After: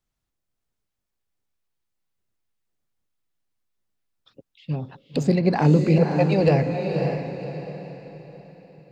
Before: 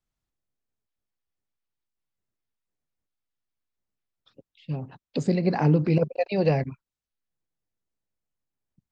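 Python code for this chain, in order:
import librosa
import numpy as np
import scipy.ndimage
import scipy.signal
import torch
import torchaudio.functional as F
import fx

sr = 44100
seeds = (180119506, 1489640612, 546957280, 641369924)

p1 = fx.tracing_dist(x, sr, depth_ms=0.021)
p2 = p1 + fx.echo_diffused(p1, sr, ms=551, feedback_pct=40, wet_db=-5, dry=0)
y = p2 * librosa.db_to_amplitude(3.5)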